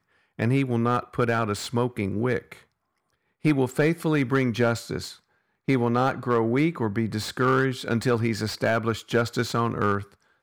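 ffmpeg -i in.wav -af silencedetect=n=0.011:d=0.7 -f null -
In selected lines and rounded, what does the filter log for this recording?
silence_start: 2.57
silence_end: 3.45 | silence_duration: 0.87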